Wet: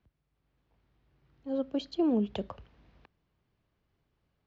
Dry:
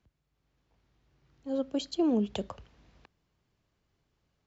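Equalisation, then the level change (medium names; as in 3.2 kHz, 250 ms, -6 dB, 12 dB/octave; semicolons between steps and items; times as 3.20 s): distance through air 240 m; treble shelf 4.9 kHz +6.5 dB; 0.0 dB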